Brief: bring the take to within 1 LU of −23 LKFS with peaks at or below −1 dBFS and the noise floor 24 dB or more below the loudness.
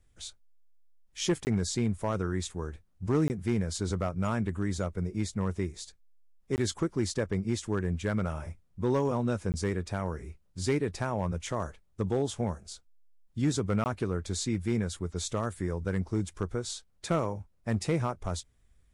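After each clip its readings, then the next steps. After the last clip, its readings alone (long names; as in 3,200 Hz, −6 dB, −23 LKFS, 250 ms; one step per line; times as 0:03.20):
share of clipped samples 0.5%; peaks flattened at −19.5 dBFS; number of dropouts 5; longest dropout 19 ms; integrated loudness −32.0 LKFS; sample peak −19.5 dBFS; target loudness −23.0 LKFS
→ clipped peaks rebuilt −19.5 dBFS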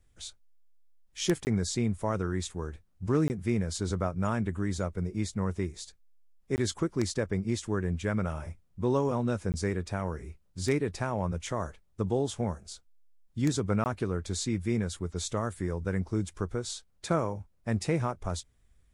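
share of clipped samples 0.0%; number of dropouts 5; longest dropout 19 ms
→ repair the gap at 0:01.45/0:03.28/0:06.56/0:09.52/0:13.84, 19 ms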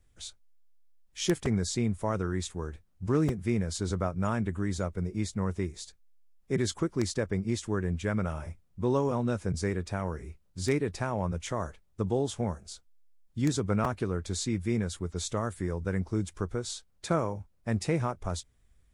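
number of dropouts 0; integrated loudness −31.5 LKFS; sample peak −11.5 dBFS; target loudness −23.0 LKFS
→ level +8.5 dB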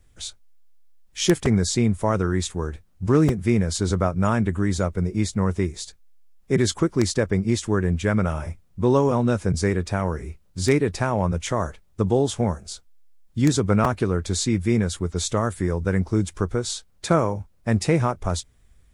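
integrated loudness −23.0 LKFS; sample peak −3.0 dBFS; background noise floor −57 dBFS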